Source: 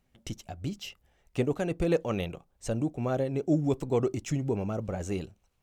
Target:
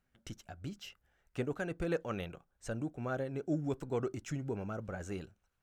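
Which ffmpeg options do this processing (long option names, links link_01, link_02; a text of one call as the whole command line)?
ffmpeg -i in.wav -af "equalizer=frequency=1500:width=2.8:gain=11.5,volume=-8.5dB" out.wav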